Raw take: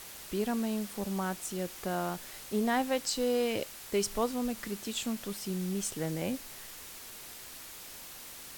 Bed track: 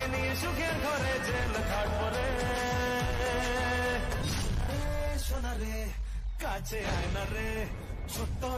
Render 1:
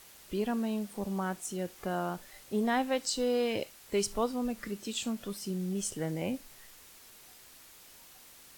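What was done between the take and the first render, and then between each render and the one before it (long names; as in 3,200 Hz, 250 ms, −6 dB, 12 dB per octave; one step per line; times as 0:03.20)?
noise reduction from a noise print 8 dB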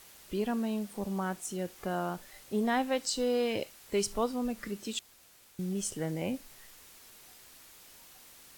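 0:04.99–0:05.59: fill with room tone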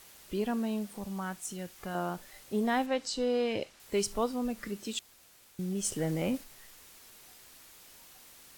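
0:00.93–0:01.95: dynamic equaliser 420 Hz, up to −8 dB, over −48 dBFS, Q 0.73
0:02.86–0:03.80: high-frequency loss of the air 55 metres
0:05.84–0:06.44: leveller curve on the samples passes 1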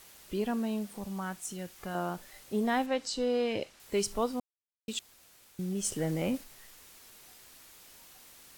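0:04.40–0:04.88: silence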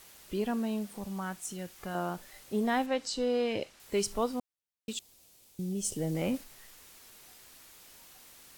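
0:04.93–0:06.15: parametric band 1,500 Hz −11.5 dB 1.5 octaves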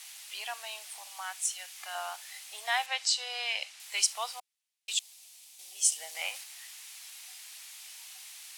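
elliptic high-pass filter 730 Hz, stop band 80 dB
flat-topped bell 4,800 Hz +10 dB 2.8 octaves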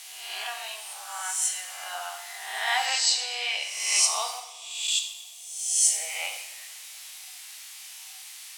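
peak hold with a rise ahead of every peak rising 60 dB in 0.97 s
coupled-rooms reverb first 0.76 s, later 3 s, from −18 dB, DRR 3 dB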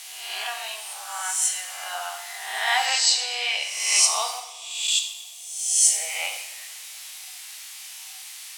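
level +3.5 dB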